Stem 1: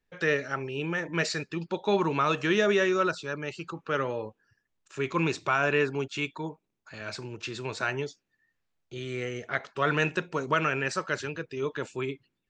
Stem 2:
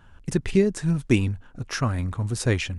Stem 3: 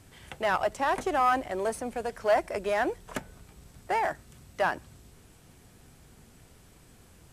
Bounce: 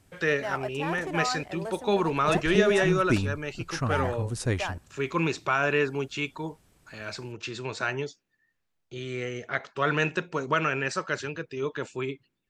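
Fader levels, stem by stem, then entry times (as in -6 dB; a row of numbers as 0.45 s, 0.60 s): +0.5 dB, -5.0 dB, -7.0 dB; 0.00 s, 2.00 s, 0.00 s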